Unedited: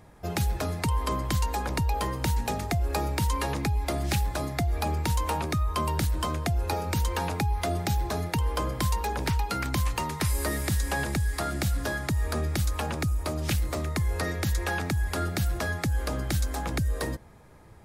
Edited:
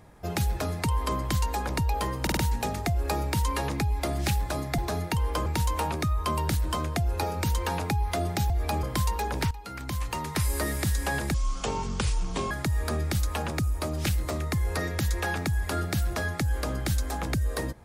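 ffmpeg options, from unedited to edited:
ffmpeg -i in.wav -filter_complex "[0:a]asplit=11[link_01][link_02][link_03][link_04][link_05][link_06][link_07][link_08][link_09][link_10][link_11];[link_01]atrim=end=2.272[link_12];[link_02]atrim=start=2.218:end=2.272[link_13];[link_03]atrim=start=2.218:end=2.272[link_14];[link_04]atrim=start=2.218:end=4.632[link_15];[link_05]atrim=start=7.998:end=8.682[link_16];[link_06]atrim=start=4.958:end=8.002[link_17];[link_07]atrim=start=4.628:end=4.962[link_18];[link_08]atrim=start=8.678:end=9.36,asetpts=PTS-STARTPTS,afade=type=out:start_time=0.678:duration=0.004:curve=hsin:silence=0.158489[link_19];[link_09]atrim=start=9.36:end=11.194,asetpts=PTS-STARTPTS,afade=type=in:duration=0.88:silence=0.158489[link_20];[link_10]atrim=start=11.19:end=11.95,asetpts=PTS-STARTPTS,asetrate=28665,aresample=44100,atrim=end_sample=51563,asetpts=PTS-STARTPTS[link_21];[link_11]atrim=start=11.946[link_22];[link_12][link_13]acrossfade=duration=0.004:curve1=hsin:curve2=hsin[link_23];[link_23][link_14]acrossfade=duration=0.004:curve1=hsin:curve2=hsin[link_24];[link_24][link_15]acrossfade=duration=0.004:curve1=hsin:curve2=hsin[link_25];[link_25][link_16]acrossfade=duration=0.004:curve1=hsin:curve2=hsin[link_26];[link_26][link_17]acrossfade=duration=0.004:curve1=hsin:curve2=hsin[link_27];[link_27][link_18]acrossfade=duration=0.004:curve1=hsin:curve2=hsin[link_28];[link_19][link_20]concat=n=2:v=0:a=1[link_29];[link_28][link_29]acrossfade=duration=0.004:curve1=hsin:curve2=hsin[link_30];[link_30][link_21]acrossfade=duration=0.004:curve1=hsin:curve2=hsin[link_31];[link_31][link_22]acrossfade=duration=0.004:curve1=hsin:curve2=hsin" out.wav

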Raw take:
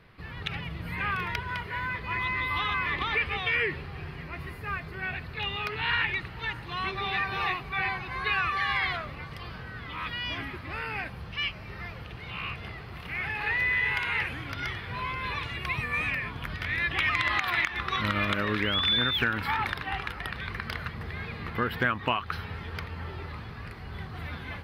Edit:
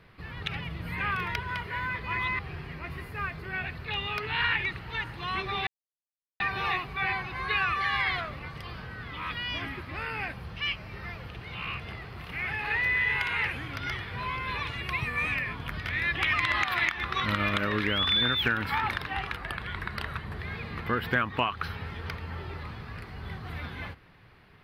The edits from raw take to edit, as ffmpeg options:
ffmpeg -i in.wav -filter_complex "[0:a]asplit=5[link_01][link_02][link_03][link_04][link_05];[link_01]atrim=end=2.392[link_06];[link_02]atrim=start=3.878:end=7.16,asetpts=PTS-STARTPTS,afade=type=out:start_time=3.278:duration=0.004:curve=hsin,apad=pad_dur=0.73[link_07];[link_03]atrim=start=7.16:end=20.134,asetpts=PTS-STARTPTS,afade=type=in:duration=0.004:curve=hsin[link_08];[link_04]atrim=start=20.13:end=21.08,asetpts=PTS-STARTPTS,asetrate=41013,aresample=44100,atrim=end_sample=45048,asetpts=PTS-STARTPTS[link_09];[link_05]atrim=start=21.076[link_10];[link_07][link_08]concat=n=2:v=0:a=1[link_11];[link_06][link_11]acrossfade=duration=0.004:curve1=hsin:curve2=hsin[link_12];[link_12][link_09]acrossfade=duration=0.004:curve1=hsin:curve2=hsin[link_13];[link_13][link_10]acrossfade=duration=0.004:curve1=hsin:curve2=hsin" out.wav

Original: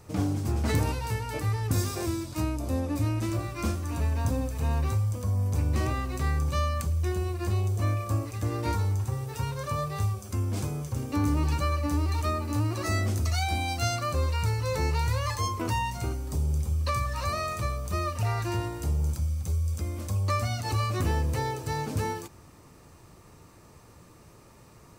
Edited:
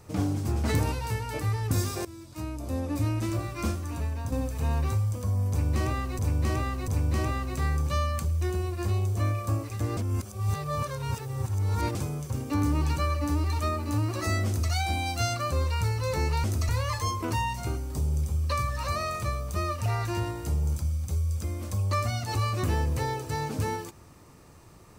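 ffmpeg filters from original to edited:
ffmpeg -i in.wav -filter_complex "[0:a]asplit=9[link_01][link_02][link_03][link_04][link_05][link_06][link_07][link_08][link_09];[link_01]atrim=end=2.05,asetpts=PTS-STARTPTS,afade=type=out:start_time=2.046:duration=0.004:curve=hsin:silence=0.125893[link_10];[link_02]atrim=start=2.05:end=4.32,asetpts=PTS-STARTPTS,afade=type=in:duration=0.94:silence=0.125893,afade=type=out:start_time=1.6:duration=0.67:silence=0.446684[link_11];[link_03]atrim=start=4.32:end=6.192,asetpts=PTS-STARTPTS,afade=type=in:duration=0.004:curve=hsin:silence=0.446684[link_12];[link_04]atrim=start=5.498:end=6.192[link_13];[link_05]atrim=start=5.498:end=8.592[link_14];[link_06]atrim=start=8.588:end=10.572,asetpts=PTS-STARTPTS,areverse[link_15];[link_07]atrim=start=10.568:end=15.062[link_16];[link_08]atrim=start=13.078:end=13.332[link_17];[link_09]atrim=start=15.058[link_18];[link_10][link_11][link_12]concat=n=3:v=0:a=1[link_19];[link_19][link_13]acrossfade=duration=0.004:curve1=hsin:curve2=hsin[link_20];[link_20][link_14]acrossfade=duration=0.004:curve1=hsin:curve2=hsin[link_21];[link_21][link_15]acrossfade=duration=0.004:curve1=hsin:curve2=hsin[link_22];[link_22][link_16]acrossfade=duration=0.004:curve1=hsin:curve2=hsin[link_23];[link_23][link_17]acrossfade=duration=0.004:curve1=hsin:curve2=hsin[link_24];[link_24][link_18]acrossfade=duration=0.004:curve1=hsin:curve2=hsin" out.wav

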